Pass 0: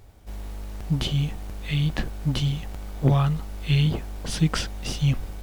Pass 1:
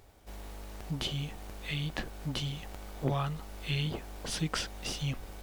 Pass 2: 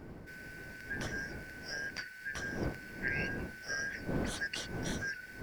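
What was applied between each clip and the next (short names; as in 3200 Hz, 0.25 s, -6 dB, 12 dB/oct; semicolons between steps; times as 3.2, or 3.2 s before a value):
in parallel at -2 dB: compressor, threshold -29 dBFS, peak gain reduction 14.5 dB; on the sum: tone controls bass -8 dB, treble 0 dB; gain -7.5 dB
four-band scrambler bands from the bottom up 3142; wind noise 330 Hz -37 dBFS; gain -6 dB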